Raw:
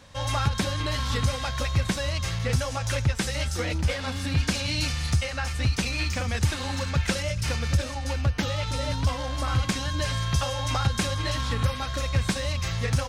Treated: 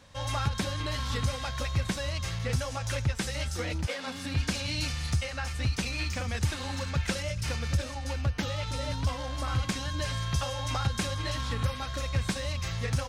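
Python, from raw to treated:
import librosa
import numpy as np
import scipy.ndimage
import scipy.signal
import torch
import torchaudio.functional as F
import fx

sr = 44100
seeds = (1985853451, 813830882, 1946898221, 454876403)

y = fx.highpass(x, sr, hz=fx.line((3.85, 250.0), (4.34, 88.0)), slope=24, at=(3.85, 4.34), fade=0.02)
y = F.gain(torch.from_numpy(y), -4.5).numpy()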